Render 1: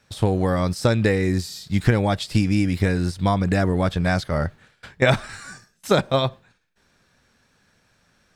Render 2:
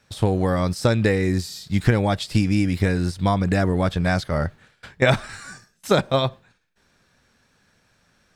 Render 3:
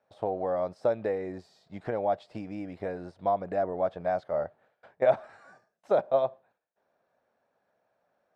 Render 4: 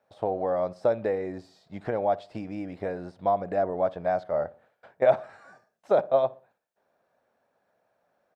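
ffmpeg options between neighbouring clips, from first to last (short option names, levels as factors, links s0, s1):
-af anull
-af "bandpass=f=650:t=q:w=3.2:csg=0"
-filter_complex "[0:a]asplit=2[s0][s1];[s1]adelay=61,lowpass=f=1300:p=1,volume=0.112,asplit=2[s2][s3];[s3]adelay=61,lowpass=f=1300:p=1,volume=0.42,asplit=2[s4][s5];[s5]adelay=61,lowpass=f=1300:p=1,volume=0.42[s6];[s0][s2][s4][s6]amix=inputs=4:normalize=0,volume=1.33"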